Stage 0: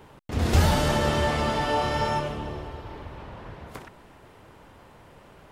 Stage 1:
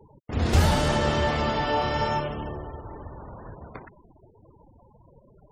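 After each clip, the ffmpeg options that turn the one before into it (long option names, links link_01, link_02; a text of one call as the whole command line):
ffmpeg -i in.wav -af "afftfilt=real='re*gte(hypot(re,im),0.01)':imag='im*gte(hypot(re,im),0.01)':win_size=1024:overlap=0.75" out.wav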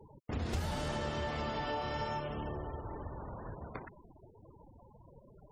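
ffmpeg -i in.wav -af "acompressor=threshold=-32dB:ratio=4,volume=-3dB" out.wav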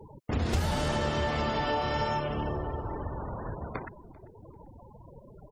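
ffmpeg -i in.wav -af "aecho=1:1:392|784:0.0631|0.0126,volume=7.5dB" out.wav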